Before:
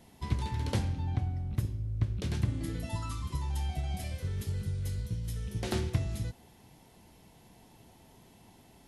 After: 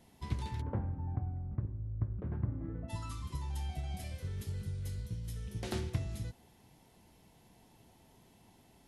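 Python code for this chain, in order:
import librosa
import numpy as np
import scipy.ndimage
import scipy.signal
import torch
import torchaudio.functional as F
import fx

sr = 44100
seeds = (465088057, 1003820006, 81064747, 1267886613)

y = fx.lowpass(x, sr, hz=1400.0, slope=24, at=(0.6, 2.88), fade=0.02)
y = F.gain(torch.from_numpy(y), -5.0).numpy()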